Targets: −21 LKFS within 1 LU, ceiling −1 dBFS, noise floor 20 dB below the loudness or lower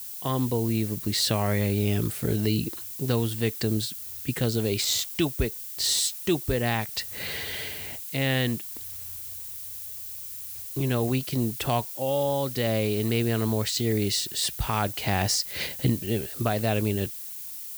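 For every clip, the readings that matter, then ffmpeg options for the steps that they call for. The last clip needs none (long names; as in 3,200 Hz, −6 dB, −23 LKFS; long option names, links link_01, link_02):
background noise floor −38 dBFS; target noise floor −47 dBFS; integrated loudness −27.0 LKFS; sample peak −10.5 dBFS; target loudness −21.0 LKFS
→ -af "afftdn=noise_reduction=9:noise_floor=-38"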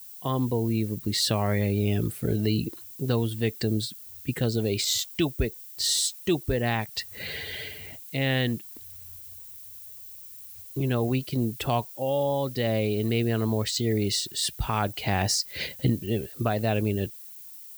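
background noise floor −44 dBFS; target noise floor −48 dBFS
→ -af "afftdn=noise_reduction=6:noise_floor=-44"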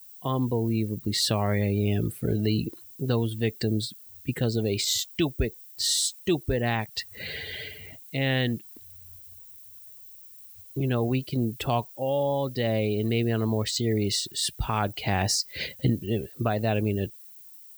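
background noise floor −48 dBFS; integrated loudness −27.5 LKFS; sample peak −11.5 dBFS; target loudness −21.0 LKFS
→ -af "volume=6.5dB"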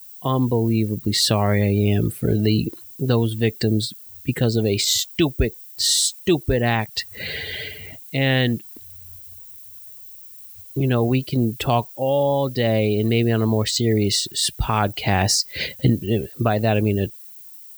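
integrated loudness −21.0 LKFS; sample peak −5.0 dBFS; background noise floor −42 dBFS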